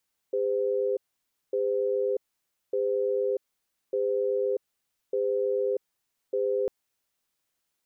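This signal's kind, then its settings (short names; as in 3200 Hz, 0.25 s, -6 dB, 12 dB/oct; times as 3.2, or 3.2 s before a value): cadence 403 Hz, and 511 Hz, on 0.64 s, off 0.56 s, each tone -26.5 dBFS 6.35 s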